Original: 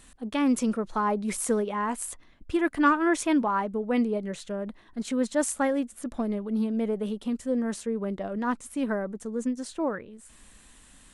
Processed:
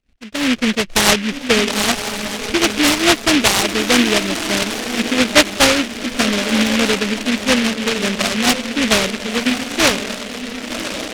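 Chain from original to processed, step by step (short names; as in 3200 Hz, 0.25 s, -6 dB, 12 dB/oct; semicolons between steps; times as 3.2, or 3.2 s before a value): Wiener smoothing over 41 samples; gate -55 dBFS, range -19 dB; AGC gain up to 11.5 dB; synth low-pass 730 Hz, resonance Q 4.9; on a send: diffused feedback echo 1.089 s, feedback 45%, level -8 dB; on the sum: noise-modulated delay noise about 2300 Hz, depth 0.31 ms; gain -2 dB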